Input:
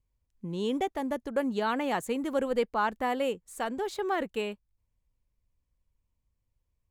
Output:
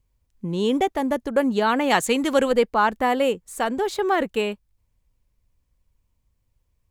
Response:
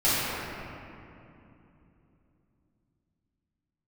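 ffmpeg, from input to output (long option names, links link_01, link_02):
-filter_complex "[0:a]asettb=1/sr,asplit=3[link_01][link_02][link_03];[link_01]atrim=end=1.904[link_04];[link_02]atrim=start=1.9:end=2.52,asetpts=PTS-STARTPTS,afade=type=in:duration=0.004:curve=qsin,afade=type=out:start_time=0.616:duration=0.004:curve=qsin,equalizer=frequency=4500:width=0.39:gain=9[link_05];[link_03]atrim=start=2.516[link_06];[link_04][link_05]acrossfade=duration=0.004:curve1=hsin:curve2=qsin[link_07];[link_07][link_06]acrossfade=duration=0.004:curve1=qsin:curve2=hsin,volume=8.5dB"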